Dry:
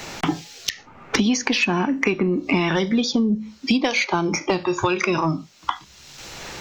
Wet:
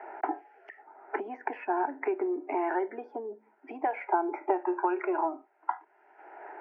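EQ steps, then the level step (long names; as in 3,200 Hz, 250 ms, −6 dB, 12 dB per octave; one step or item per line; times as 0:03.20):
Butterworth high-pass 400 Hz 36 dB per octave
low-pass filter 1,300 Hz 24 dB per octave
phaser with its sweep stopped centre 770 Hz, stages 8
0.0 dB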